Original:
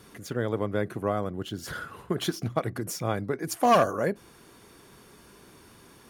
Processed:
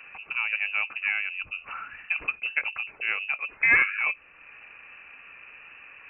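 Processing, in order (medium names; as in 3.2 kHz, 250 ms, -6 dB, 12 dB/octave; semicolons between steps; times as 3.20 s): high-pass 84 Hz; frequency inversion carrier 2.8 kHz; tape noise reduction on one side only encoder only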